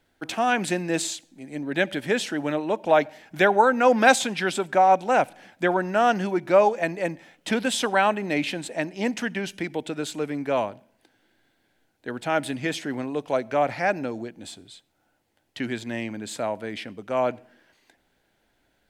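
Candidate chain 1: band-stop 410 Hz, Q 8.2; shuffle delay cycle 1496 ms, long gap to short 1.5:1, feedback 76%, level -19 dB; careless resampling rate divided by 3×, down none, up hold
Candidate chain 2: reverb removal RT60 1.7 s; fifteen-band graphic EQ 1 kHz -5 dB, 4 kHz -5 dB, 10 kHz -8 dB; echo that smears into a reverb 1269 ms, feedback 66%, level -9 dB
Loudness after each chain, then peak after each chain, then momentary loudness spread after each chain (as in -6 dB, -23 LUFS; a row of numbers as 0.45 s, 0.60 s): -24.5 LUFS, -26.5 LUFS; -4.5 dBFS, -6.5 dBFS; 20 LU, 15 LU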